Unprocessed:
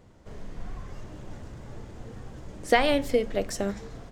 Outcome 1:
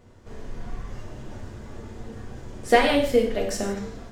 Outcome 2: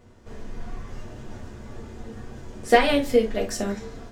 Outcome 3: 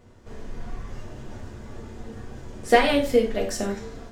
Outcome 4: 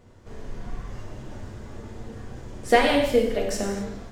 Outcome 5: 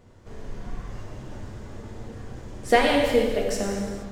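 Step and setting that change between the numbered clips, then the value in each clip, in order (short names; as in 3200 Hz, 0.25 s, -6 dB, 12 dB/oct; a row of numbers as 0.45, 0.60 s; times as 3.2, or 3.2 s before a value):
non-linear reverb, gate: 200, 90, 130, 300, 500 ms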